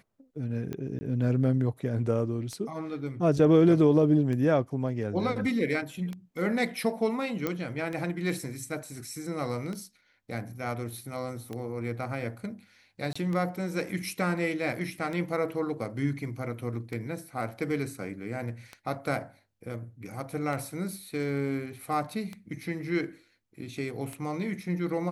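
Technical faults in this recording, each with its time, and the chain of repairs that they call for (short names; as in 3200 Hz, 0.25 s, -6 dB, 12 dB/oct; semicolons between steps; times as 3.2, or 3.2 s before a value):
tick 33 1/3 rpm -23 dBFS
0.99–1.01 gap 20 ms
7.47 pop -15 dBFS
13.13–13.15 gap 25 ms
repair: de-click; interpolate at 0.99, 20 ms; interpolate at 13.13, 25 ms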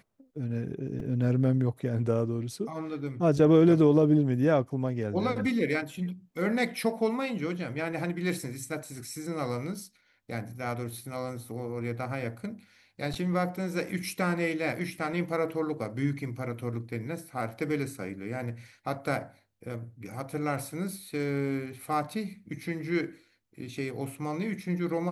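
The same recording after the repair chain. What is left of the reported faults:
none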